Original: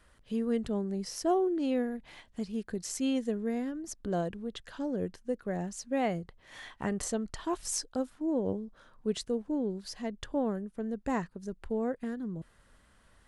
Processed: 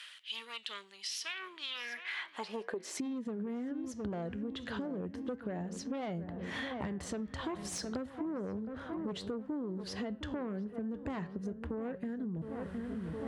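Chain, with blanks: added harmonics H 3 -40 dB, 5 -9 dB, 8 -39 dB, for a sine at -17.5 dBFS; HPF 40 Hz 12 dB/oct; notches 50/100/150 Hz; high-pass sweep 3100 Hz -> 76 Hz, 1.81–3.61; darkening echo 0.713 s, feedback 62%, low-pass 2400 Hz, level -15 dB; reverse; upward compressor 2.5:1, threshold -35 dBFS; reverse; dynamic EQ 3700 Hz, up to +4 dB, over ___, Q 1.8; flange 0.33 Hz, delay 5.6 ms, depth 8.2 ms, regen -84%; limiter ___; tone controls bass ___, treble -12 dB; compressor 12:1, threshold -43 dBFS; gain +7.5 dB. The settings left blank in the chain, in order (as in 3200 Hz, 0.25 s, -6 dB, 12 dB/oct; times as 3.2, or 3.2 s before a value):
-48 dBFS, -25.5 dBFS, +1 dB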